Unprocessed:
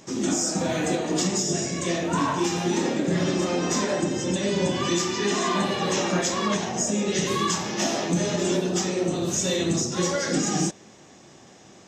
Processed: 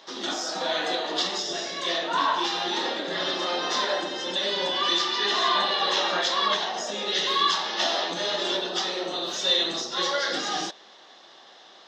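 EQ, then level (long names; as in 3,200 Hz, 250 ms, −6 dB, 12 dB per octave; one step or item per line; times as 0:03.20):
high-pass filter 720 Hz 12 dB per octave
parametric band 2,400 Hz −10 dB 0.45 octaves
high shelf with overshoot 5,500 Hz −13.5 dB, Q 3
+4.0 dB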